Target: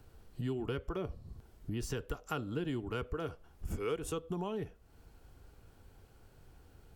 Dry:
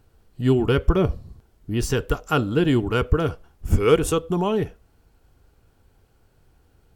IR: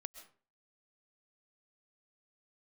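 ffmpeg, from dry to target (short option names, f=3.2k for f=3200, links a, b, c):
-filter_complex "[0:a]acrossover=split=260|1600|3400[a][b][c][d];[a]alimiter=limit=-16.5dB:level=0:latency=1:release=355[e];[e][b][c][d]amix=inputs=4:normalize=0,acompressor=threshold=-40dB:ratio=3"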